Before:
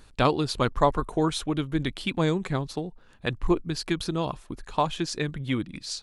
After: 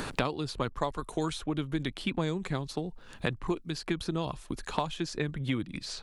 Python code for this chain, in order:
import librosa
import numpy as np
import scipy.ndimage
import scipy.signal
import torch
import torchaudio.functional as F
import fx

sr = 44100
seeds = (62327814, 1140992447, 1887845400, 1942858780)

y = fx.band_squash(x, sr, depth_pct=100)
y = y * librosa.db_to_amplitude(-6.5)